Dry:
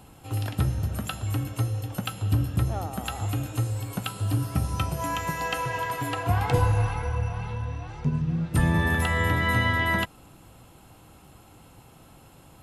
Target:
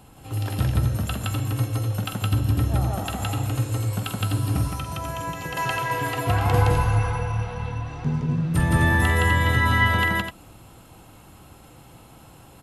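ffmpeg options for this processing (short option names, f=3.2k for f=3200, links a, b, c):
-filter_complex "[0:a]aecho=1:1:46.65|166.2|253.6:0.355|1|0.501,asettb=1/sr,asplit=3[a][b][c];[a]atrim=end=4.674[d];[b]atrim=start=4.67:end=5.57,asetpts=PTS-STARTPTS,afade=t=in:d=0.004:c=qsin,afade=t=out:st=0.896:d=0.004:c=qsin,acrossover=split=83|670[e][f][g];[e]acompressor=threshold=-38dB:ratio=4[h];[f]acompressor=threshold=-32dB:ratio=4[i];[g]acompressor=threshold=-33dB:ratio=4[j];[h][i][j]amix=inputs=3:normalize=0[k];[c]atrim=start=5.566[l];[d][k]acrossfade=d=0.004:c1=hsin:c2=qsin[m];[m][l]acrossfade=d=0.004:c1=qsin:c2=hsin"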